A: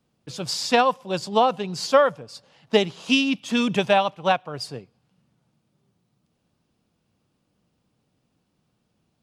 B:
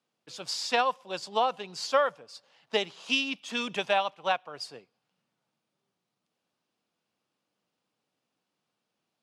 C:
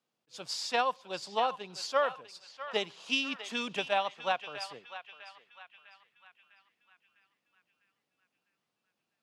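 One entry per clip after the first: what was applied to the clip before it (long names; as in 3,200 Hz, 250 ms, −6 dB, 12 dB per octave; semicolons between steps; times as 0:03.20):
meter weighting curve A; level −6 dB
feedback echo with a band-pass in the loop 652 ms, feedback 52%, band-pass 1,900 Hz, level −10.5 dB; level that may rise only so fast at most 420 dB per second; level −3 dB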